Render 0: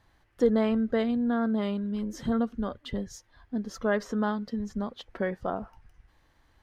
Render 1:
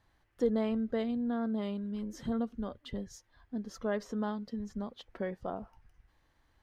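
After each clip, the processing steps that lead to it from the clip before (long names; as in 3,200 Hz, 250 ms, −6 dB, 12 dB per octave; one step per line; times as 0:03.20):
dynamic equaliser 1,500 Hz, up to −5 dB, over −48 dBFS, Q 1.7
level −6 dB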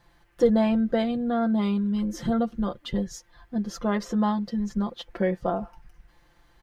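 comb filter 5.8 ms, depth 79%
level +8.5 dB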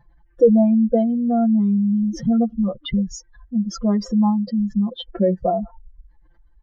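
expanding power law on the bin magnitudes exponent 2.3
level +7 dB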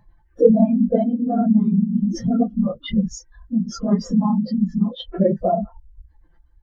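random phases in long frames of 50 ms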